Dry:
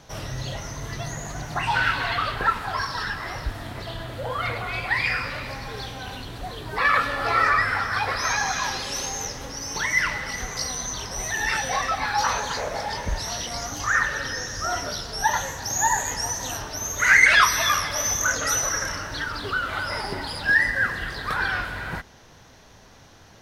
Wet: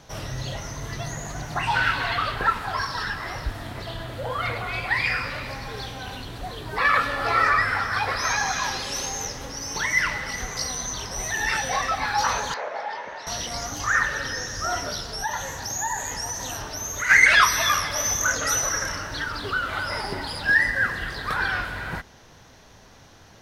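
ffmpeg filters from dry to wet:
-filter_complex "[0:a]asettb=1/sr,asplit=3[s0][s1][s2];[s0]atrim=end=12.544[s3];[s1]atrim=start=12.54:end=13.27,asetpts=PTS-STARTPTS,afade=t=in:d=0.004:c=qsin,afade=t=out:st=0.726:d=0.004:c=qsin,highpass=530,lowpass=2400[s4];[s2]atrim=start=13.266[s5];[s3][s4]acrossfade=d=0.004:c1=hsin:c2=qsin[s6];[s6][s5]acrossfade=d=0.004:c1=qsin:c2=hsin,asplit=3[s7][s8][s9];[s7]afade=t=out:st=15.14:d=0.02[s10];[s8]acompressor=threshold=0.0398:ratio=2:attack=3.2:release=140:knee=1:detection=peak,afade=t=in:st=15.14:d=0.02,afade=t=out:st=17.09:d=0.02[s11];[s9]afade=t=in:st=17.09:d=0.02[s12];[s10][s11][s12]amix=inputs=3:normalize=0"

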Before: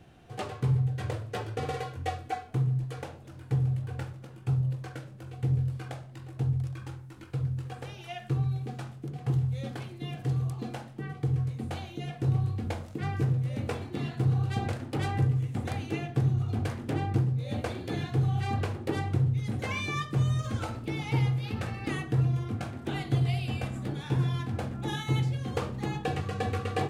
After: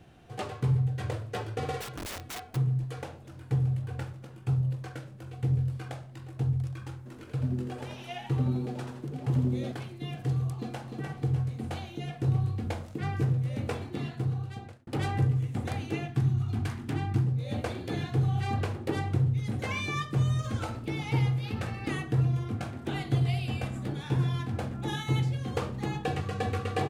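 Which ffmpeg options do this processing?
-filter_complex "[0:a]asplit=3[s0][s1][s2];[s0]afade=t=out:st=1.8:d=0.02[s3];[s1]aeval=exprs='(mod(47.3*val(0)+1,2)-1)/47.3':c=same,afade=t=in:st=1.8:d=0.02,afade=t=out:st=2.55:d=0.02[s4];[s2]afade=t=in:st=2.55:d=0.02[s5];[s3][s4][s5]amix=inputs=3:normalize=0,asplit=3[s6][s7][s8];[s6]afade=t=out:st=7.05:d=0.02[s9];[s7]asplit=6[s10][s11][s12][s13][s14][s15];[s11]adelay=84,afreqshift=120,volume=0.473[s16];[s12]adelay=168,afreqshift=240,volume=0.195[s17];[s13]adelay=252,afreqshift=360,volume=0.0794[s18];[s14]adelay=336,afreqshift=480,volume=0.0327[s19];[s15]adelay=420,afreqshift=600,volume=0.0133[s20];[s10][s16][s17][s18][s19][s20]amix=inputs=6:normalize=0,afade=t=in:st=7.05:d=0.02,afade=t=out:st=9.71:d=0.02[s21];[s8]afade=t=in:st=9.71:d=0.02[s22];[s9][s21][s22]amix=inputs=3:normalize=0,asplit=2[s23][s24];[s24]afade=t=in:st=10.54:d=0.01,afade=t=out:st=10.98:d=0.01,aecho=0:1:300|600|900|1200|1500|1800:0.562341|0.281171|0.140585|0.0702927|0.0351463|0.0175732[s25];[s23][s25]amix=inputs=2:normalize=0,asettb=1/sr,asplit=3[s26][s27][s28];[s26]atrim=end=16.084[s29];[s27]atrim=start=16.08:end=17.25,asetpts=PTS-STARTPTS,afade=t=in:d=0.004:c=qsin,afade=t=out:st=1.166:d=0.004:c=qsin,equalizer=f=530:t=o:w=0.56:g=-14[s30];[s28]atrim=start=17.246[s31];[s29][s30]acrossfade=d=0.004:c1=hsin:c2=qsin[s32];[s32][s31]acrossfade=d=0.004:c1=qsin:c2=hsin,asplit=2[s33][s34];[s33]atrim=end=14.87,asetpts=PTS-STARTPTS,afade=t=out:st=13.88:d=0.99[s35];[s34]atrim=start=14.87,asetpts=PTS-STARTPTS,afade=t=in:d=0.004:c=hsin[s36];[s35][s36]concat=n=2:v=0:a=1"

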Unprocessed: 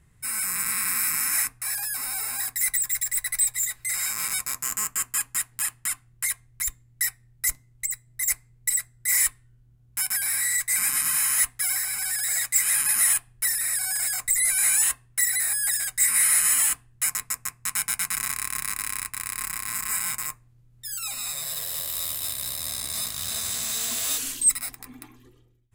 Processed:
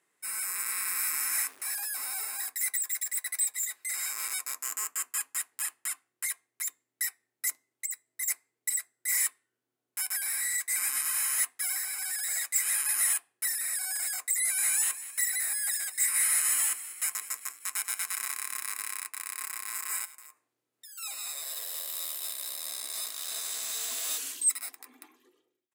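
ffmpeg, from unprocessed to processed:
-filter_complex "[0:a]asettb=1/sr,asplit=3[s0][s1][s2];[s0]atrim=end=0.984[s3];[s1]atrim=start=0.98:end=2.25,asetpts=PTS-STARTPTS,afade=t=in:d=0.004:c=qsin,afade=t=out:st=1.266:d=0.004:c=qsin,aeval=exprs='val(0)+0.5*0.0119*sgn(val(0))':c=same[s4];[s2]atrim=start=2.246[s5];[s3][s4]acrossfade=d=0.004:c1=hsin:c2=qsin[s6];[s6][s5]acrossfade=d=0.004:c1=qsin:c2=hsin,asplit=3[s7][s8][s9];[s7]afade=t=out:st=14.83:d=0.02[s10];[s8]asplit=7[s11][s12][s13][s14][s15][s16][s17];[s12]adelay=195,afreqshift=53,volume=0.168[s18];[s13]adelay=390,afreqshift=106,volume=0.101[s19];[s14]adelay=585,afreqshift=159,volume=0.0603[s20];[s15]adelay=780,afreqshift=212,volume=0.0363[s21];[s16]adelay=975,afreqshift=265,volume=0.0219[s22];[s17]adelay=1170,afreqshift=318,volume=0.013[s23];[s11][s18][s19][s20][s21][s22][s23]amix=inputs=7:normalize=0,afade=t=in:st=14.83:d=0.02,afade=t=out:st=18.93:d=0.02[s24];[s9]afade=t=in:st=18.93:d=0.02[s25];[s10][s24][s25]amix=inputs=3:normalize=0,asplit=3[s26][s27][s28];[s26]afade=t=out:st=20.04:d=0.02[s29];[s27]acompressor=threshold=0.0126:ratio=20:attack=3.2:release=140:knee=1:detection=peak,afade=t=in:st=20.04:d=0.02,afade=t=out:st=20.97:d=0.02[s30];[s28]afade=t=in:st=20.97:d=0.02[s31];[s29][s30][s31]amix=inputs=3:normalize=0,highpass=f=330:w=0.5412,highpass=f=330:w=1.3066,volume=0.501"

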